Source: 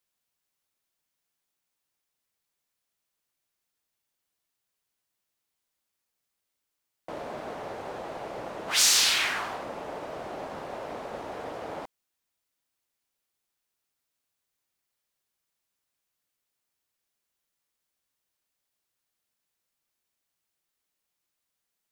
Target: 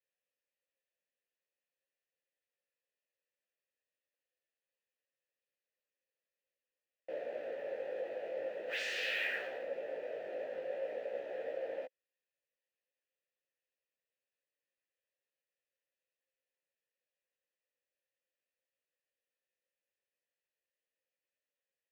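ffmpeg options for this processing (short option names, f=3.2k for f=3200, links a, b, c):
-filter_complex "[0:a]asplit=3[a][b][c];[a]bandpass=f=530:t=q:w=8,volume=0dB[d];[b]bandpass=f=1.84k:t=q:w=8,volume=-6dB[e];[c]bandpass=f=2.48k:t=q:w=8,volume=-9dB[f];[d][e][f]amix=inputs=3:normalize=0,flanger=delay=15:depth=4.6:speed=0.43,acrossover=split=3000[g][h];[h]acompressor=threshold=-56dB:ratio=4:attack=1:release=60[i];[g][i]amix=inputs=2:normalize=0,acrossover=split=740|2200[j][k][l];[l]acrusher=bits=5:mode=log:mix=0:aa=0.000001[m];[j][k][m]amix=inputs=3:normalize=0,volume=7.5dB"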